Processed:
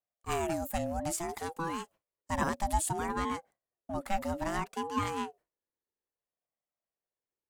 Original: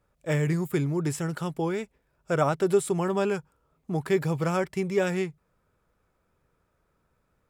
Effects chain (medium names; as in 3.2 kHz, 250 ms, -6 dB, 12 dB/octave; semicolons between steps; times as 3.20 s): gate with hold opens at -50 dBFS; treble shelf 4.7 kHz +12 dB, from 3.06 s +6 dB; ring modulator with a swept carrier 530 Hz, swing 25%, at 0.6 Hz; trim -4.5 dB